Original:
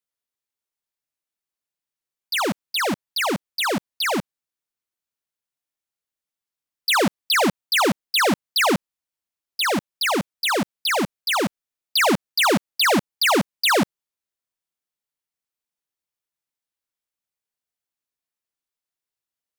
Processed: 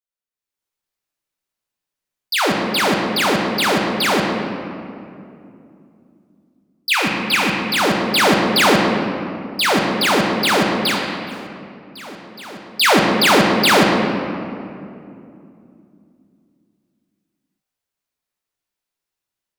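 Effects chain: 6.9–7.64 thirty-one-band EQ 400 Hz -7 dB, 630 Hz -9 dB, 2500 Hz +9 dB; AGC gain up to 11 dB; 10.86–12.82 dip -22.5 dB, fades 0.14 s; reverb RT60 2.6 s, pre-delay 7 ms, DRR -0.5 dB; gain -7.5 dB

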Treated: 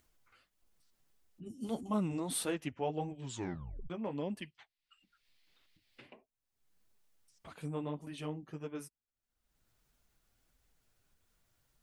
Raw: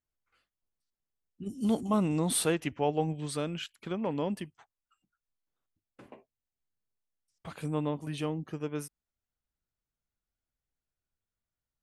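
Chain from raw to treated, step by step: 4.42–6.13 band shelf 3000 Hz +13.5 dB; upward compressor, threshold -48 dBFS; flange 1.6 Hz, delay 2.6 ms, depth 7.2 ms, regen -24%; 3.22 tape stop 0.68 s; gain -3.5 dB

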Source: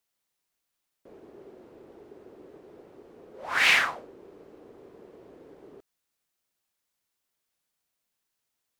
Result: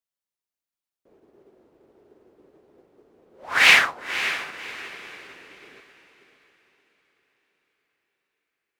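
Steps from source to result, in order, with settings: diffused feedback echo 0.559 s, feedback 51%, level -7 dB; upward expander 1.5:1, over -56 dBFS; gain +7.5 dB

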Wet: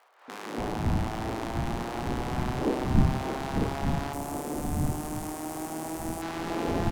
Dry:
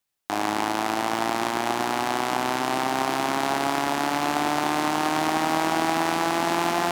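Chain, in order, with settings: wind noise 250 Hz -23 dBFS; 4.13–6.22 EQ curve 320 Hz 0 dB, 1700 Hz -8 dB, 4000 Hz -8 dB, 8600 Hz +10 dB; crackle 78/s -40 dBFS; tilt shelf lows +3.5 dB, about 1200 Hz; notches 50/100/150 Hz; three bands offset in time highs, mids, lows 0.28/0.58 s, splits 270/1000 Hz; gain -9 dB

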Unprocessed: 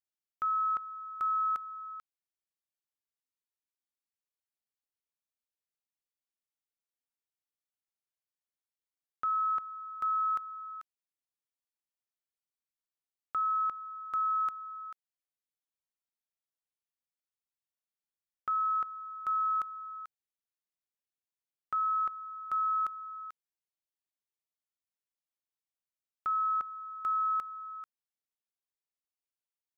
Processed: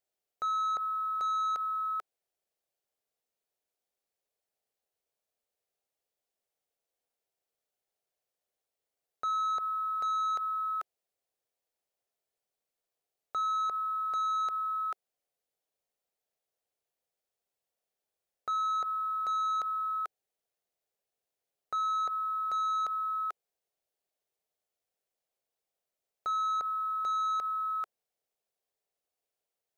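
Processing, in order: sample leveller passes 1; band shelf 550 Hz +11 dB 1.2 oct; limiter -33.5 dBFS, peak gain reduction 10 dB; gain +6 dB

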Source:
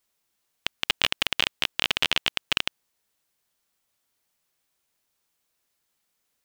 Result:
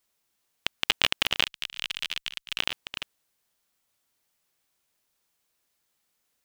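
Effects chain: reverse delay 0.396 s, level -11.5 dB; 1.44–2.59 passive tone stack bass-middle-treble 5-5-5

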